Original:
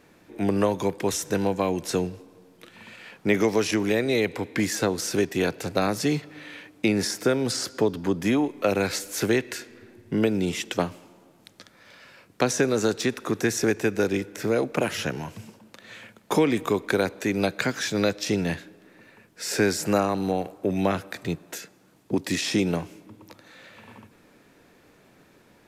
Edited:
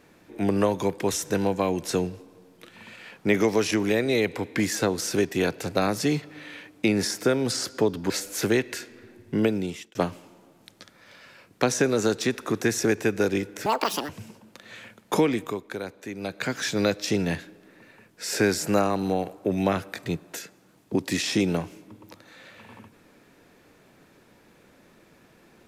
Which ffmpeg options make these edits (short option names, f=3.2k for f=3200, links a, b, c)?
-filter_complex "[0:a]asplit=7[a][b][c][d][e][f][g];[a]atrim=end=8.102[h];[b]atrim=start=8.888:end=10.74,asetpts=PTS-STARTPTS,afade=t=out:st=1.352:d=0.5[i];[c]atrim=start=10.74:end=14.454,asetpts=PTS-STARTPTS,afade=t=in:d=0.004:c=hsin[j];[d]atrim=start=14.45:end=15.28,asetpts=PTS-STARTPTS,asetrate=84672,aresample=44100,atrim=end_sample=19064,asetpts=PTS-STARTPTS[k];[e]atrim=start=15.276:end=16.81,asetpts=PTS-STARTPTS,afade=t=out:st=1.094:d=0.44:silence=0.298538[l];[f]atrim=start=16.81:end=17.39,asetpts=PTS-STARTPTS,volume=-10.5dB[m];[g]atrim=start=17.39,asetpts=PTS-STARTPTS,afade=t=in:d=0.44:silence=0.298538[n];[i][j]concat=n=2:v=0:a=1[o];[h][o]acrossfade=d=0.004:c1=hsin:c2=hsin[p];[p][k]acrossfade=d=0.004:c1=hsin:c2=hsin[q];[l][m][n]concat=n=3:v=0:a=1[r];[q][r]acrossfade=d=0.004:c1=hsin:c2=hsin"